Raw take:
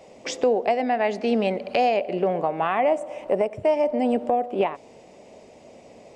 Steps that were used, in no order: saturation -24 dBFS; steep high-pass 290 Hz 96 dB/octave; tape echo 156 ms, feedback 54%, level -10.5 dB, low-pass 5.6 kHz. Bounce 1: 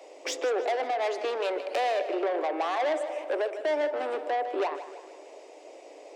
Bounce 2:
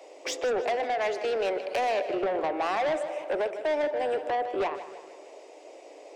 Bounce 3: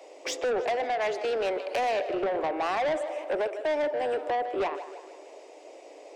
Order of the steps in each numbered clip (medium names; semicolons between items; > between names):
saturation > tape echo > steep high-pass; steep high-pass > saturation > tape echo; tape echo > steep high-pass > saturation